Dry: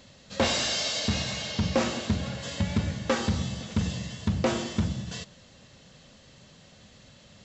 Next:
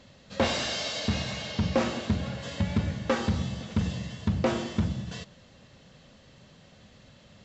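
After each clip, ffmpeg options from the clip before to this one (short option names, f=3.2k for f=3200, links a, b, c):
-af "lowpass=f=3.3k:p=1"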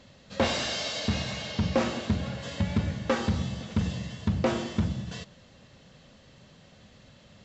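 -af anull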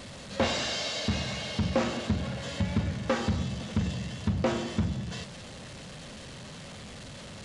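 -af "aeval=exprs='val(0)+0.5*0.0133*sgn(val(0))':c=same,aresample=22050,aresample=44100,volume=-2dB"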